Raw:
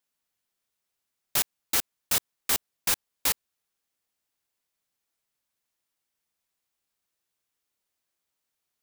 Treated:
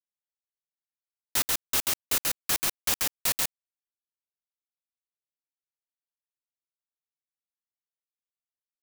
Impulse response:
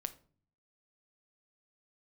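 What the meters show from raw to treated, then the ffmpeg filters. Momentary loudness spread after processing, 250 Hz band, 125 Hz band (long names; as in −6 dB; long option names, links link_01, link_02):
3 LU, +1.5 dB, +1.5 dB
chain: -filter_complex "[0:a]aeval=exprs='(mod(7.5*val(0)+1,2)-1)/7.5':channel_layout=same,asplit=2[link_01][link_02];[1:a]atrim=start_sample=2205,adelay=136[link_03];[link_02][link_03]afir=irnorm=-1:irlink=0,volume=0dB[link_04];[link_01][link_04]amix=inputs=2:normalize=0,acrusher=bits=3:mix=0:aa=0.000001,volume=-2dB"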